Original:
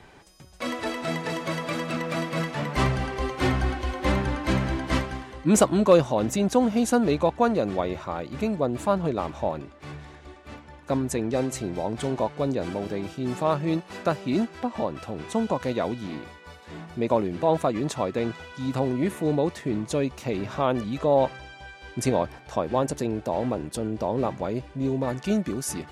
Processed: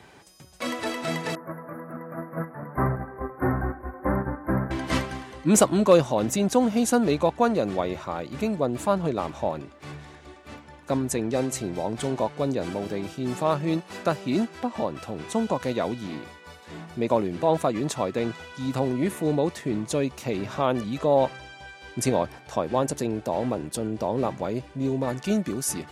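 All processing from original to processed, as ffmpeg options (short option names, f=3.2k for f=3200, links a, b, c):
-filter_complex "[0:a]asettb=1/sr,asplit=3[a][b][c];[a]atrim=end=1.354[d];[b]atrim=start=1.35:end=4.71,asetpts=PTS-STARTPTS,afade=t=in:d=0.004:c=qsin,afade=t=out:st=3.356:d=0.004:c=qsin,agate=range=-8dB:threshold=-27dB:ratio=16:release=100:detection=peak,asuperstop=centerf=4800:order=12:qfactor=0.51[e];[c]atrim=start=4.706[f];[d][e]acrossfade=d=0.004:c1=hsin:c2=qsin[g];[g][f]acrossfade=d=0.004:c1=qsin:c2=hsin,highpass=77,highshelf=f=6.1k:g=5.5"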